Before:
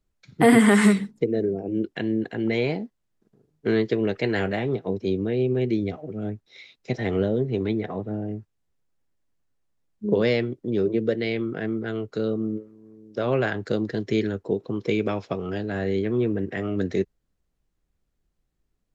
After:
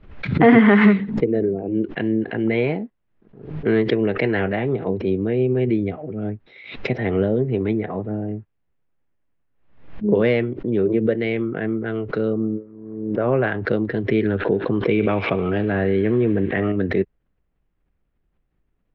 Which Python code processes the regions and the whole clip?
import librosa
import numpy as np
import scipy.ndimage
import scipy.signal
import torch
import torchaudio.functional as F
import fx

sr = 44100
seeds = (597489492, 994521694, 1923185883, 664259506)

y = fx.chain(x, sr, fx.lowpass(hz=1800.0, slope=12),
    fx.pre_swell(db_per_s=49.0), at=(12.33, 13.44))
y = fx.chain(y, sr, fx.echo_wet_highpass(ms=73, feedback_pct=82, hz=1900.0, wet_db=-13.5),
    fx.env_flatten(amount_pct=50), at=(14.25, 16.72))
y = scipy.signal.sosfilt(scipy.signal.butter(4, 2800.0, 'lowpass', fs=sr, output='sos'), y)
y = fx.pre_swell(y, sr, db_per_s=87.0)
y = F.gain(torch.from_numpy(y), 3.5).numpy()